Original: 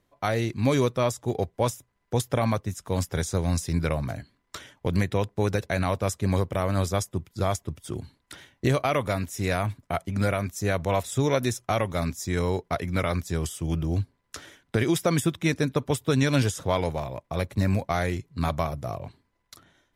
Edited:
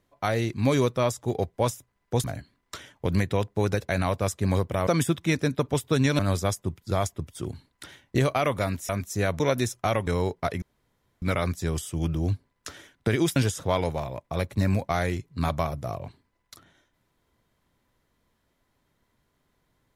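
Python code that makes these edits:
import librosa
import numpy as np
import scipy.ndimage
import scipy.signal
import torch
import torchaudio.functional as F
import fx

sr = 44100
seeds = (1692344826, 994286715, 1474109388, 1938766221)

y = fx.edit(x, sr, fx.cut(start_s=2.24, length_s=1.81),
    fx.cut(start_s=9.38, length_s=0.97),
    fx.cut(start_s=10.86, length_s=0.39),
    fx.cut(start_s=11.92, length_s=0.43),
    fx.insert_room_tone(at_s=12.9, length_s=0.6),
    fx.move(start_s=15.04, length_s=1.32, to_s=6.68), tone=tone)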